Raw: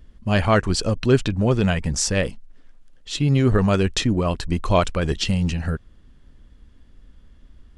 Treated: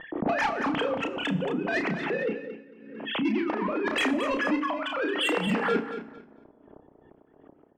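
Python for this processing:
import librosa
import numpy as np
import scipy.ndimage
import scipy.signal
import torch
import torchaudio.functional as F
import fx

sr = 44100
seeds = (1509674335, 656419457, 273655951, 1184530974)

y = fx.sine_speech(x, sr)
y = fx.highpass(y, sr, hz=390.0, slope=24, at=(3.23, 5.47), fade=0.02)
y = fx.env_lowpass(y, sr, base_hz=590.0, full_db=-17.5)
y = fx.lowpass(y, sr, hz=2300.0, slope=6)
y = fx.over_compress(y, sr, threshold_db=-30.0, ratio=-1.0)
y = 10.0 ** (-24.0 / 20.0) * np.tanh(y / 10.0 ** (-24.0 / 20.0))
y = fx.doubler(y, sr, ms=32.0, db=-6.5)
y = fx.echo_feedback(y, sr, ms=225, feedback_pct=21, wet_db=-10.5)
y = fx.rev_fdn(y, sr, rt60_s=0.96, lf_ratio=1.5, hf_ratio=0.85, size_ms=20.0, drr_db=11.5)
y = fx.pre_swell(y, sr, db_per_s=56.0)
y = y * librosa.db_to_amplitude(2.0)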